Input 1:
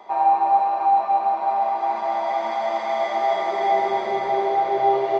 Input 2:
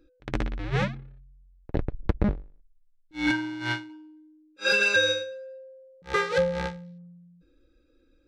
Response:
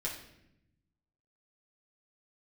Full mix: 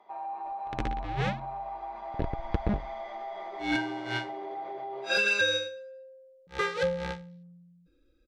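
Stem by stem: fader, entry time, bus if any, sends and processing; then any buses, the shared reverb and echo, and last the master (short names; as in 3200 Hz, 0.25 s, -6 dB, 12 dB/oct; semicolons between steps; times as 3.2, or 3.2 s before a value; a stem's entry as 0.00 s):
-14.5 dB, 0.00 s, no send, limiter -16 dBFS, peak gain reduction 7.5 dB; LPF 2900 Hz 6 dB/oct
-4.5 dB, 0.45 s, no send, dry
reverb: off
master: bell 3100 Hz +2.5 dB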